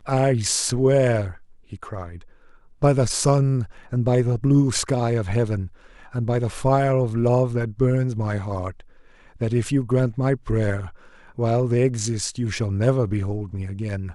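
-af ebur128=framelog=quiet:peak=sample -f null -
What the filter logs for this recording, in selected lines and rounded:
Integrated loudness:
  I:         -22.0 LUFS
  Threshold: -32.8 LUFS
Loudness range:
  LRA:         2.8 LU
  Threshold: -42.8 LUFS
  LRA low:   -24.1 LUFS
  LRA high:  -21.3 LUFS
Sample peak:
  Peak:       -5.2 dBFS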